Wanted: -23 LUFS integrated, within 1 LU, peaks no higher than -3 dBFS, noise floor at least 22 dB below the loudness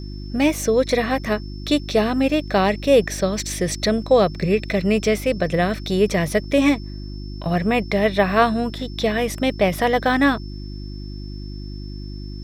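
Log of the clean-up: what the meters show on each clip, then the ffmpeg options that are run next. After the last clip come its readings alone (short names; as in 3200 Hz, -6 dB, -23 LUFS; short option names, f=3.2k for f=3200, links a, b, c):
hum 50 Hz; harmonics up to 350 Hz; hum level -30 dBFS; steady tone 5300 Hz; tone level -44 dBFS; loudness -20.0 LUFS; peak -3.0 dBFS; loudness target -23.0 LUFS
-> -af "bandreject=f=50:t=h:w=4,bandreject=f=100:t=h:w=4,bandreject=f=150:t=h:w=4,bandreject=f=200:t=h:w=4,bandreject=f=250:t=h:w=4,bandreject=f=300:t=h:w=4,bandreject=f=350:t=h:w=4"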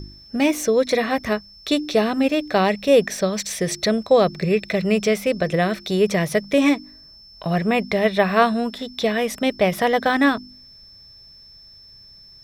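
hum none; steady tone 5300 Hz; tone level -44 dBFS
-> -af "bandreject=f=5.3k:w=30"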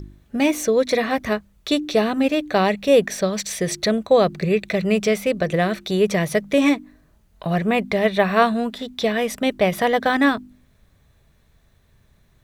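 steady tone none; loudness -20.5 LUFS; peak -3.0 dBFS; loudness target -23.0 LUFS
-> -af "volume=-2.5dB"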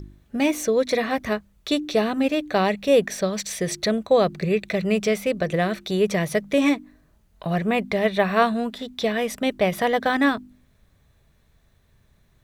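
loudness -23.0 LUFS; peak -5.5 dBFS; noise floor -61 dBFS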